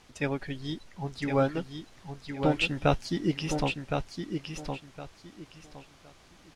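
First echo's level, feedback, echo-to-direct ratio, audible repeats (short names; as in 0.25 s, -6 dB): -6.0 dB, 23%, -6.0 dB, 3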